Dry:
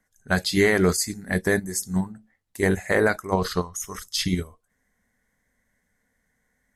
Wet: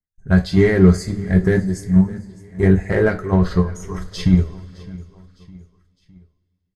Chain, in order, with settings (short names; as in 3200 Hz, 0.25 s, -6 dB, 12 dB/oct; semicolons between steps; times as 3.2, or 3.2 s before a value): LPF 11000 Hz 12 dB/oct; RIAA curve playback; gate -46 dBFS, range -30 dB; in parallel at -3.5 dB: soft clip -24.5 dBFS, distortion -3 dB; on the sum: feedback echo 0.61 s, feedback 47%, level -20.5 dB; on a send at -3 dB: reverb, pre-delay 3 ms; on the sum: gain -3.5 dB